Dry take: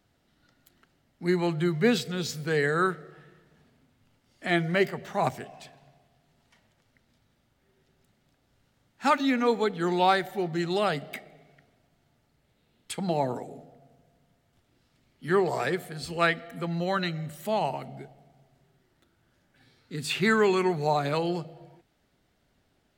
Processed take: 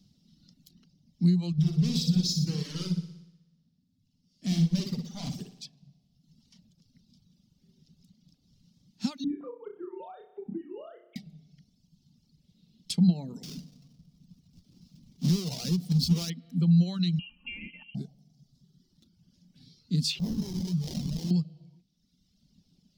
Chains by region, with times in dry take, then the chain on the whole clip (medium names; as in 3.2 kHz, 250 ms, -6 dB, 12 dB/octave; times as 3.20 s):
1.52–5.62 s: overload inside the chain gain 31 dB + flutter echo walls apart 10.2 m, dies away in 1.3 s + upward expansion, over -51 dBFS
9.24–11.16 s: formants replaced by sine waves + low-pass 1.2 kHz + flutter echo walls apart 5.3 m, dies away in 0.64 s
13.43–16.30 s: square wave that keeps the level + compression 3:1, threshold -27 dBFS
17.19–17.95 s: peaking EQ 680 Hz -7 dB 0.63 oct + comb 3.3 ms, depth 67% + frequency inversion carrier 3 kHz
20.19–21.31 s: amplifier tone stack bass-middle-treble 5-5-5 + sample-rate reducer 1.3 kHz, jitter 20% + level flattener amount 70%
whole clip: reverb removal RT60 1.3 s; compression 5:1, threshold -33 dBFS; FFT filter 120 Hz 0 dB, 180 Hz +14 dB, 350 Hz -8 dB, 680 Hz -16 dB, 1.1 kHz -17 dB, 1.7 kHz -22 dB, 3 kHz -4 dB, 5.3 kHz +9 dB, 7.9 kHz -5 dB; trim +4.5 dB